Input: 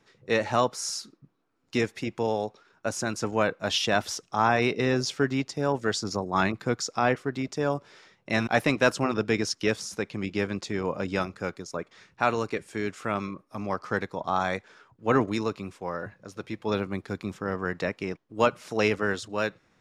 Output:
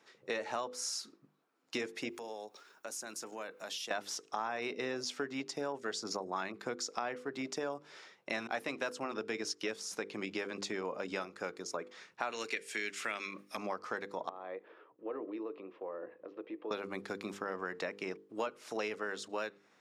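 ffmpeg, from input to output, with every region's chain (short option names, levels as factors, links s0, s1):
-filter_complex "[0:a]asettb=1/sr,asplit=3[s0][s1][s2];[s0]atrim=end=2.094[s3];[s1]atrim=start=2.09:end=3.91,asetpts=PTS-STARTPTS,afade=t=in:d=0.004:c=qsin,afade=t=out:st=1.816:d=0.004:c=qsin,highpass=140,aemphasis=mode=production:type=50fm,acompressor=threshold=0.00631:ratio=3:attack=3.2:release=140:knee=1:detection=peak[s4];[s2]atrim=start=3.906[s5];[s3][s4]acrossfade=d=0.004:c1=hsin:c2=qsin[s6];[s6][s5]acrossfade=d=0.004:c1=qsin:c2=hsin,asettb=1/sr,asplit=3[s7][s8][s9];[s7]atrim=end=12.324[s10];[s8]atrim=start=12.32:end=13.57,asetpts=PTS-STARTPTS,afade=t=in:d=0.004:c=qsin,afade=t=out:st=1.246:d=0.004:c=qsin,highpass=140,highshelf=f=1500:t=q:w=1.5:g=10[s11];[s9]atrim=start=13.566[s12];[s10][s11]acrossfade=d=0.004:c1=hsin:c2=qsin[s13];[s13][s12]acrossfade=d=0.004:c1=qsin:c2=hsin,asettb=1/sr,asplit=3[s14][s15][s16];[s14]atrim=end=14.294[s17];[s15]atrim=start=14.29:end=16.71,asetpts=PTS-STARTPTS,afade=t=in:d=0.004:c=qsin,afade=t=out:st=2.416:d=0.004:c=qsin,acompressor=threshold=0.00708:ratio=2.5:attack=3.2:release=140:knee=1:detection=peak,highpass=220,equalizer=f=220:t=q:w=4:g=-5,equalizer=f=320:t=q:w=4:g=9,equalizer=f=490:t=q:w=4:g=7,equalizer=f=850:t=q:w=4:g=-4,equalizer=f=1500:t=q:w=4:g=-10,equalizer=f=2200:t=q:w=4:g=-7,lowpass=f=2500:w=0.5412,lowpass=f=2500:w=1.3066[s18];[s16]atrim=start=16.706[s19];[s17][s18]acrossfade=d=0.004:c1=hsin:c2=qsin[s20];[s20][s19]acrossfade=d=0.004:c1=qsin:c2=hsin,highpass=300,bandreject=f=50:t=h:w=6,bandreject=f=100:t=h:w=6,bandreject=f=150:t=h:w=6,bandreject=f=200:t=h:w=6,bandreject=f=250:t=h:w=6,bandreject=f=300:t=h:w=6,bandreject=f=350:t=h:w=6,bandreject=f=400:t=h:w=6,bandreject=f=450:t=h:w=6,bandreject=f=500:t=h:w=6,acompressor=threshold=0.0178:ratio=5"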